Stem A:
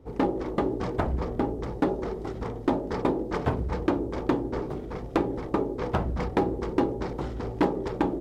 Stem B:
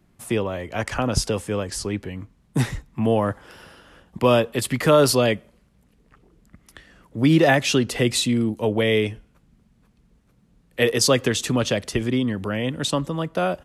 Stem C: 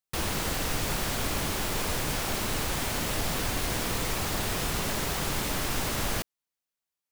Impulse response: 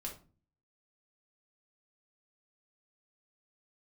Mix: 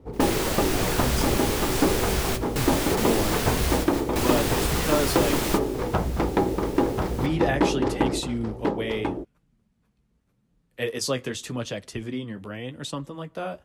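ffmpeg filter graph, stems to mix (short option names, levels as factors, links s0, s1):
-filter_complex "[0:a]volume=1.26,asplit=2[s0][s1];[s1]volume=0.596[s2];[1:a]flanger=delay=5.9:depth=9.6:regen=-40:speed=0.85:shape=triangular,volume=0.531,asplit=2[s3][s4];[2:a]volume=1.33,asplit=2[s5][s6];[s6]volume=0.168[s7];[s4]apad=whole_len=313553[s8];[s5][s8]sidechaingate=range=0.0562:threshold=0.00141:ratio=16:detection=peak[s9];[s2][s7]amix=inputs=2:normalize=0,aecho=0:1:1041:1[s10];[s0][s3][s9][s10]amix=inputs=4:normalize=0"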